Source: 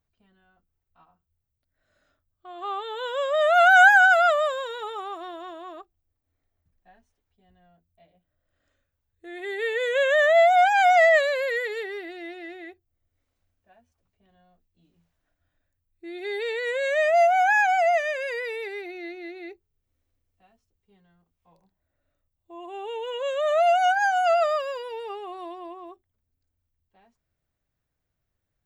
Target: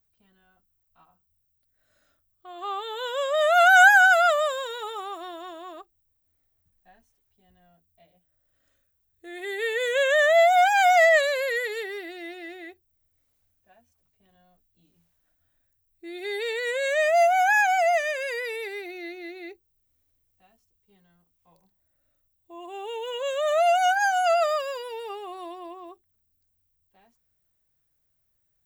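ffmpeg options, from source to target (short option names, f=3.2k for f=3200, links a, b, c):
-af "aemphasis=mode=production:type=50kf,volume=-1dB"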